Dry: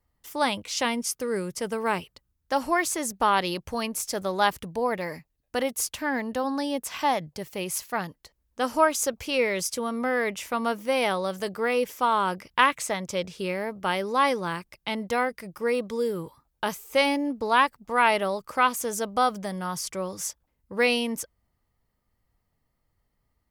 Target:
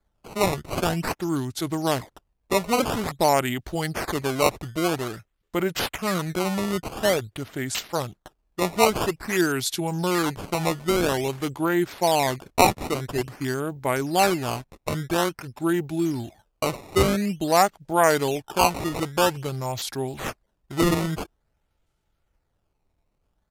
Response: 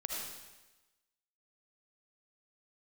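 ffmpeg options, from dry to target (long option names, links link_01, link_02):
-af "acrusher=samples=11:mix=1:aa=0.000001:lfo=1:lforange=17.6:lforate=0.49,asetrate=31183,aresample=44100,atempo=1.41421,volume=2.5dB"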